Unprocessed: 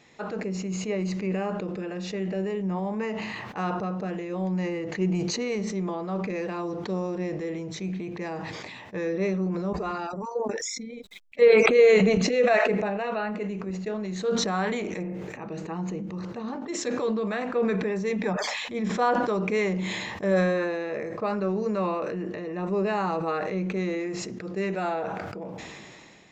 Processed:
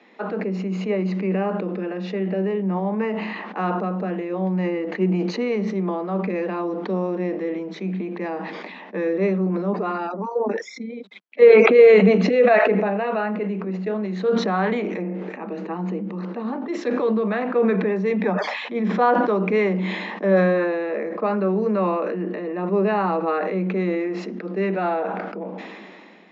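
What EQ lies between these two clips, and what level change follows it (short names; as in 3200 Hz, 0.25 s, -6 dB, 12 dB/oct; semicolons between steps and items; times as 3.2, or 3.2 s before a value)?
steep high-pass 180 Hz 96 dB/oct; air absorption 210 m; high shelf 6500 Hz -10.5 dB; +6.5 dB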